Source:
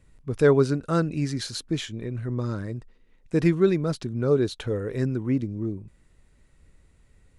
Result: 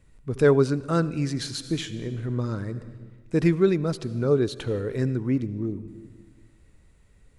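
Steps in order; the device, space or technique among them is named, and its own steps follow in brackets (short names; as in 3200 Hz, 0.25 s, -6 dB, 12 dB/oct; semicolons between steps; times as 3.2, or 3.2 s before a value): compressed reverb return (on a send at -7 dB: reverb RT60 1.2 s, pre-delay 68 ms + compressor 6:1, threshold -30 dBFS, peak gain reduction 17 dB)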